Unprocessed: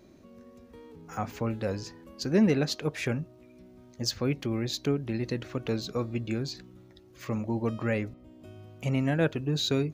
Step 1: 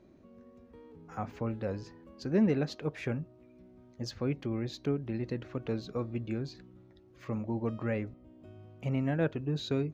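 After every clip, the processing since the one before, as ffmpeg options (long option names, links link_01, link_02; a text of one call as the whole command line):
ffmpeg -i in.wav -af "lowpass=frequency=1800:poles=1,volume=-3.5dB" out.wav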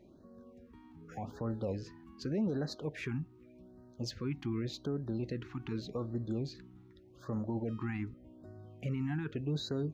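ffmpeg -i in.wav -af "alimiter=level_in=2.5dB:limit=-24dB:level=0:latency=1:release=35,volume=-2.5dB,afftfilt=real='re*(1-between(b*sr/1024,490*pow(2800/490,0.5+0.5*sin(2*PI*0.85*pts/sr))/1.41,490*pow(2800/490,0.5+0.5*sin(2*PI*0.85*pts/sr))*1.41))':imag='im*(1-between(b*sr/1024,490*pow(2800/490,0.5+0.5*sin(2*PI*0.85*pts/sr))/1.41,490*pow(2800/490,0.5+0.5*sin(2*PI*0.85*pts/sr))*1.41))':win_size=1024:overlap=0.75" out.wav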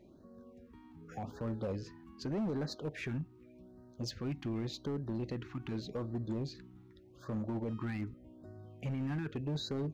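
ffmpeg -i in.wav -af "volume=31.5dB,asoftclip=hard,volume=-31.5dB" out.wav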